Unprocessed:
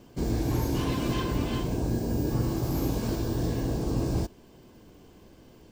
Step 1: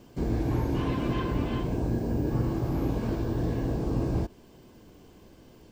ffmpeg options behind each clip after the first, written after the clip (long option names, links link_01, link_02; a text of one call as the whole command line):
ffmpeg -i in.wav -filter_complex "[0:a]acrossover=split=3000[link_01][link_02];[link_02]acompressor=threshold=-57dB:ratio=4:attack=1:release=60[link_03];[link_01][link_03]amix=inputs=2:normalize=0" out.wav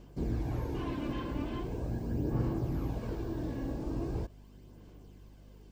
ffmpeg -i in.wav -af "aphaser=in_gain=1:out_gain=1:delay=3.6:decay=0.37:speed=0.41:type=sinusoidal,aeval=exprs='val(0)+0.00562*(sin(2*PI*50*n/s)+sin(2*PI*2*50*n/s)/2+sin(2*PI*3*50*n/s)/3+sin(2*PI*4*50*n/s)/4+sin(2*PI*5*50*n/s)/5)':channel_layout=same,volume=-8dB" out.wav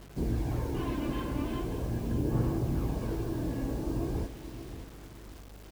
ffmpeg -i in.wav -af "aecho=1:1:578|1156|1734|2312:0.266|0.0905|0.0308|0.0105,acrusher=bits=8:mix=0:aa=0.000001,volume=2.5dB" out.wav